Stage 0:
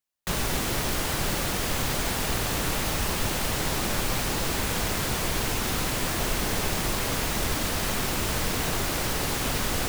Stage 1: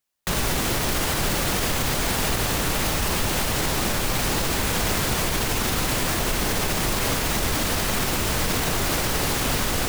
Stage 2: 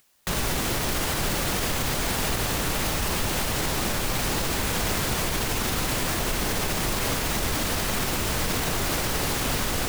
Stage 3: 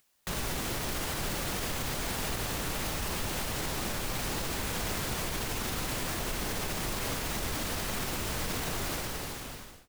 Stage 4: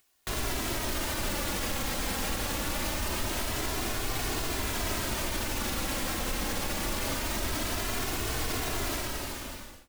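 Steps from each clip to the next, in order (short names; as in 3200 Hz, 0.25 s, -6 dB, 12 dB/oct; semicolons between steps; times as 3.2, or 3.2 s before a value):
limiter -20 dBFS, peak gain reduction 6 dB; gain +6.5 dB
upward compressor, threshold -45 dBFS; gain -2.5 dB
ending faded out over 1.03 s; gain -7.5 dB
flange 0.24 Hz, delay 2.7 ms, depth 1.1 ms, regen -29%; gain +5.5 dB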